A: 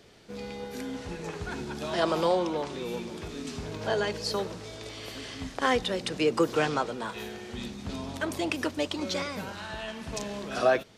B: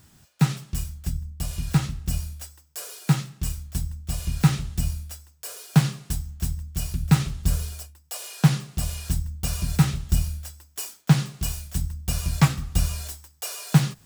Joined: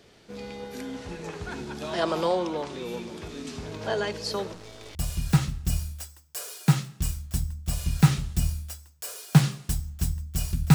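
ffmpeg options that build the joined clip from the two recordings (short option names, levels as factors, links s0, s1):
-filter_complex "[0:a]asettb=1/sr,asplit=3[s0][s1][s2];[s0]atrim=end=4.534[s3];[s1]atrim=start=4.53:end=4.95,asetpts=PTS-STARTPTS,afade=t=in:d=0.004:c=qsin,afade=t=out:st=0.416:d=0.004:c=qsin,aeval=exprs='if(lt(val(0),0),0.251*val(0),val(0))':c=same[s4];[s2]atrim=start=4.946[s5];[s3][s4]acrossfade=d=0.004:c1=hsin:c2=qsin[s6];[s6][s5]acrossfade=d=0.004:c1=qsin:c2=hsin,apad=whole_dur=10.74,atrim=end=10.74,atrim=end=4.952[s7];[1:a]atrim=start=1.358:end=7.15[s8];[s7][s8]acrossfade=d=0.004:c1=hsin:c2=hsin"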